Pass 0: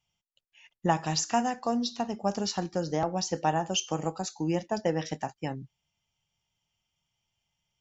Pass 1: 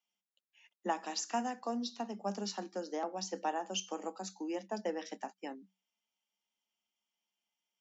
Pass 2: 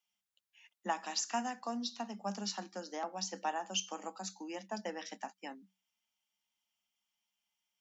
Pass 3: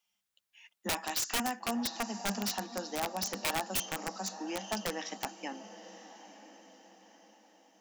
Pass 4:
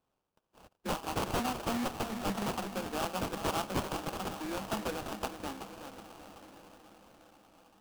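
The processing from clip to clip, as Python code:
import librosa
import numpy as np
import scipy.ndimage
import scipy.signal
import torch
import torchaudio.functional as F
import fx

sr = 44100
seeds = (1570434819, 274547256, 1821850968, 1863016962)

y1 = scipy.signal.sosfilt(scipy.signal.cheby1(10, 1.0, 190.0, 'highpass', fs=sr, output='sos'), x)
y1 = F.gain(torch.from_numpy(y1), -7.5).numpy()
y2 = fx.peak_eq(y1, sr, hz=400.0, db=-10.5, octaves=1.3)
y2 = F.gain(torch.from_numpy(y2), 2.5).numpy()
y3 = fx.echo_diffused(y2, sr, ms=964, feedback_pct=42, wet_db=-14)
y3 = (np.mod(10.0 ** (30.0 / 20.0) * y3 + 1.0, 2.0) - 1.0) / 10.0 ** (30.0 / 20.0)
y3 = F.gain(torch.from_numpy(y3), 5.0).numpy()
y4 = fx.echo_feedback(y3, sr, ms=376, feedback_pct=42, wet_db=-9.5)
y4 = fx.sample_hold(y4, sr, seeds[0], rate_hz=2000.0, jitter_pct=20)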